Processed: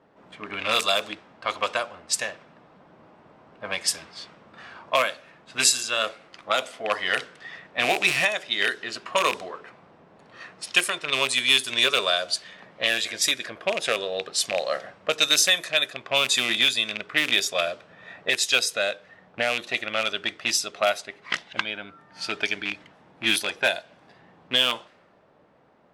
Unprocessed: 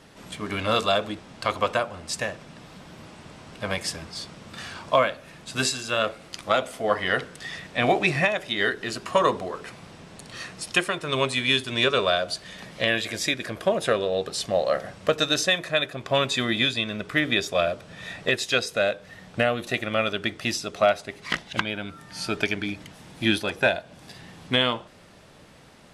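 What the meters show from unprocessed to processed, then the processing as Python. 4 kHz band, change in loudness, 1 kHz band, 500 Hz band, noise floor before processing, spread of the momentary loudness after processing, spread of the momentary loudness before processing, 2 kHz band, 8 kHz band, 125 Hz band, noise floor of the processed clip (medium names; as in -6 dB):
+4.0 dB, +1.0 dB, -2.0 dB, -4.5 dB, -49 dBFS, 14 LU, 16 LU, +1.5 dB, +7.5 dB, -13.0 dB, -57 dBFS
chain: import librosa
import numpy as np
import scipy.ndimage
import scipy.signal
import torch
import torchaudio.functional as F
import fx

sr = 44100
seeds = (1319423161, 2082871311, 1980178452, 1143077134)

y = fx.rattle_buzz(x, sr, strikes_db=-32.0, level_db=-15.0)
y = fx.riaa(y, sr, side='recording')
y = fx.env_lowpass(y, sr, base_hz=860.0, full_db=-16.0)
y = F.gain(torch.from_numpy(y), -2.0).numpy()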